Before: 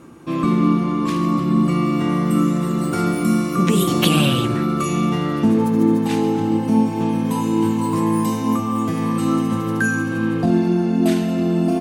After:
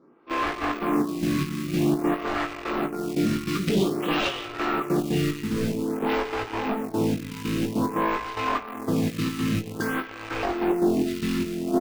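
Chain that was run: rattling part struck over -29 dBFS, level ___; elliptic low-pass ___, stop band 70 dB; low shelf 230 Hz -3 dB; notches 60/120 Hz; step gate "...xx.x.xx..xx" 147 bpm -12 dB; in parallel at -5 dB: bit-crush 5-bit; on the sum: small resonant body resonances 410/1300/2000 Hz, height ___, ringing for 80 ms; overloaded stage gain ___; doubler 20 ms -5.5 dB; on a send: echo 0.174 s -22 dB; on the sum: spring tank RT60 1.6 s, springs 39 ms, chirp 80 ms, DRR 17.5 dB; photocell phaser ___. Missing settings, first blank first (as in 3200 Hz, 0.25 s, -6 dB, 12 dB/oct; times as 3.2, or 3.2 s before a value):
-26 dBFS, 5100 Hz, 8 dB, 18 dB, 0.51 Hz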